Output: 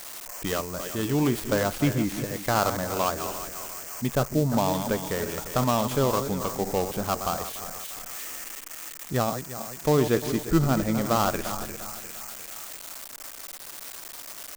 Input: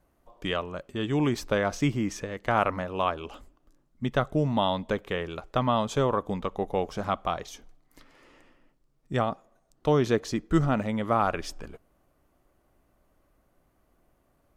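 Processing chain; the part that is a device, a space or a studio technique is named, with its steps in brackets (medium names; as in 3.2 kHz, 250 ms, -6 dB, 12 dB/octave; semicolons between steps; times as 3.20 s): backward echo that repeats 175 ms, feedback 57%, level -9.5 dB; 4.15–4.72 s: low-pass 1.3 kHz -> 2.3 kHz; bass shelf 460 Hz +2 dB; budget class-D amplifier (dead-time distortion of 0.13 ms; zero-crossing glitches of -20 dBFS)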